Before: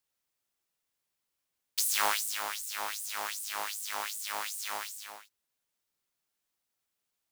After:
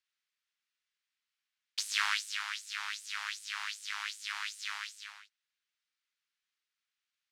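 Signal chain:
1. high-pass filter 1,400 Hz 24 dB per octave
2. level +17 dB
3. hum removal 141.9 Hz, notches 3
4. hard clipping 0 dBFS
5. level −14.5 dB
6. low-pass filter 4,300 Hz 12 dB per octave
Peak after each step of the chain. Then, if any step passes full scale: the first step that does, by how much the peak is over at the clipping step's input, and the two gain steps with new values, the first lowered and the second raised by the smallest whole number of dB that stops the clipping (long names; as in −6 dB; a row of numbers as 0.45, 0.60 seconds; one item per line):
−12.0, +5.0, +5.0, 0.0, −14.5, −15.5 dBFS
step 2, 5.0 dB
step 2 +12 dB, step 5 −9.5 dB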